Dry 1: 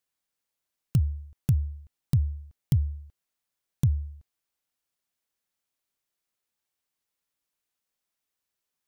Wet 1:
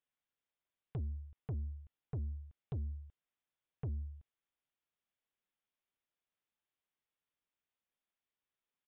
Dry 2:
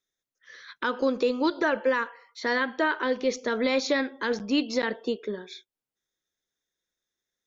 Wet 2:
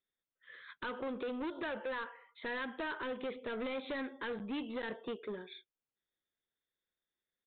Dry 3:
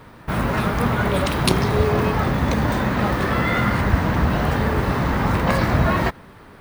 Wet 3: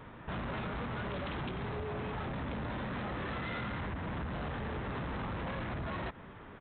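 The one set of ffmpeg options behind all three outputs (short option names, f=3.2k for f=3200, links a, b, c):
-af "acompressor=threshold=-22dB:ratio=12,aresample=8000,asoftclip=type=tanh:threshold=-29.5dB,aresample=44100,volume=-5.5dB"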